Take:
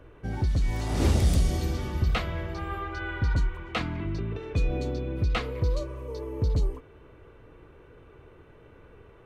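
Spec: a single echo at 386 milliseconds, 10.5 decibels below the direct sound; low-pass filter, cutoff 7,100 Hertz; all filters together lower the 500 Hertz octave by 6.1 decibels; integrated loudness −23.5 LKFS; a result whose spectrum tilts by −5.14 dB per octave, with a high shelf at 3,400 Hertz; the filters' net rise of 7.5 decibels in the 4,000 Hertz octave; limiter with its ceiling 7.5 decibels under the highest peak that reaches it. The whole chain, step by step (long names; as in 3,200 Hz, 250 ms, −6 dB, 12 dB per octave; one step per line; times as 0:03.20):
low-pass filter 7,100 Hz
parametric band 500 Hz −8 dB
high-shelf EQ 3,400 Hz +5 dB
parametric band 4,000 Hz +6.5 dB
brickwall limiter −20.5 dBFS
single-tap delay 386 ms −10.5 dB
level +8 dB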